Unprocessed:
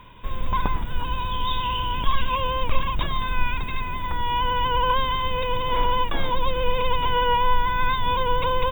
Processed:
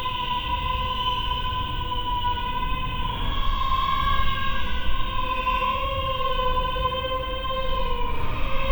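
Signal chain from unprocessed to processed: de-hum 45.09 Hz, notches 36; Chebyshev shaper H 2 -16 dB, 8 -31 dB, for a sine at -7 dBFS; Paulstretch 7.7×, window 0.10 s, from 1.62 s

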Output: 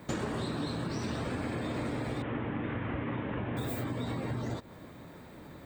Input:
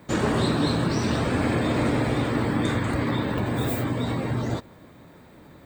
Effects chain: 2.22–3.57 s: CVSD coder 16 kbps; compression 12:1, threshold -31 dBFS, peak gain reduction 13 dB

